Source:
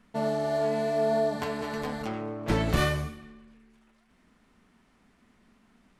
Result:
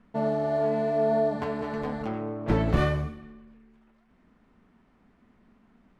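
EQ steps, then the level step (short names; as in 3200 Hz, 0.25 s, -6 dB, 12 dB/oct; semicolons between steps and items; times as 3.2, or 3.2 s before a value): LPF 1200 Hz 6 dB/oct; +2.5 dB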